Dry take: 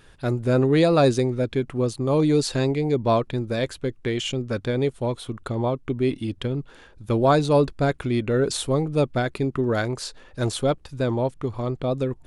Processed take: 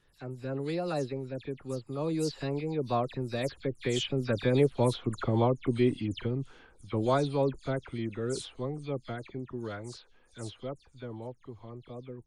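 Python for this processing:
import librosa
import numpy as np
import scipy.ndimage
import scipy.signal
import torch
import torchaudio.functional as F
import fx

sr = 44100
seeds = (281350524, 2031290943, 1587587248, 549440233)

y = fx.spec_delay(x, sr, highs='early', ms=113)
y = fx.doppler_pass(y, sr, speed_mps=17, closest_m=14.0, pass_at_s=5.0)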